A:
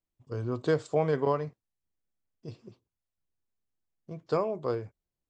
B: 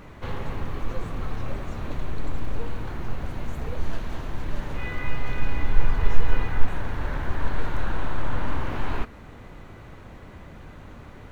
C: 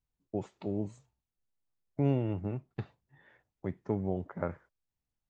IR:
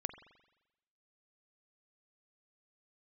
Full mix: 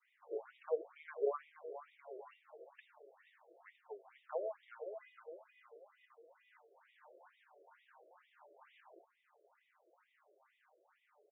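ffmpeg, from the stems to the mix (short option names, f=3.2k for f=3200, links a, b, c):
-filter_complex "[0:a]acompressor=threshold=-27dB:ratio=6,volume=0.5dB,asplit=2[a][b];[b]volume=-9dB[c];[1:a]adynamicequalizer=threshold=0.00282:dfrequency=1600:dqfactor=1:tfrequency=1600:tqfactor=1:attack=5:release=100:ratio=0.375:range=3.5:mode=cutabove:tftype=bell,acompressor=threshold=-20dB:ratio=5,volume=-14.5dB,asplit=2[d][e];[e]volume=-22dB[f];[2:a]aeval=exprs='if(lt(val(0),0),0.708*val(0),val(0))':c=same,equalizer=f=220:w=0.3:g=-12,volume=1.5dB,asplit=2[g][h];[h]volume=-10dB[i];[c][f][i]amix=inputs=3:normalize=0,aecho=0:1:479|958|1437|1916|2395|2874:1|0.44|0.194|0.0852|0.0375|0.0165[j];[a][d][g][j]amix=inputs=4:normalize=0,flanger=delay=5.4:depth=2.3:regen=23:speed=1.1:shape=triangular,afftfilt=real='re*between(b*sr/1024,470*pow(2700/470,0.5+0.5*sin(2*PI*2.2*pts/sr))/1.41,470*pow(2700/470,0.5+0.5*sin(2*PI*2.2*pts/sr))*1.41)':imag='im*between(b*sr/1024,470*pow(2700/470,0.5+0.5*sin(2*PI*2.2*pts/sr))/1.41,470*pow(2700/470,0.5+0.5*sin(2*PI*2.2*pts/sr))*1.41)':win_size=1024:overlap=0.75"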